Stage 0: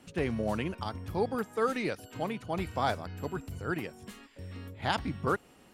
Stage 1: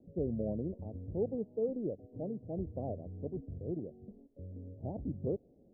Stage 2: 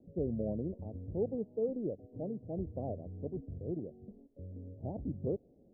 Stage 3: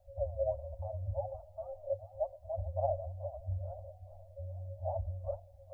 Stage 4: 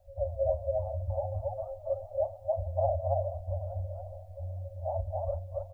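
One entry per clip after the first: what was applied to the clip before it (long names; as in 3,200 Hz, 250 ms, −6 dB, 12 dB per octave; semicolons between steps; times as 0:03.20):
Butterworth low-pass 620 Hz 48 dB per octave; level −3 dB
no processing that can be heard
echo with a time of its own for lows and highs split 320 Hz, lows 268 ms, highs 429 ms, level −14.5 dB; flanger 1.3 Hz, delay 3.8 ms, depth 5.6 ms, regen +26%; brick-wall band-stop 100–530 Hz; level +13 dB
loudspeakers that aren't time-aligned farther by 12 metres −11 dB, 95 metres −1 dB; level +3 dB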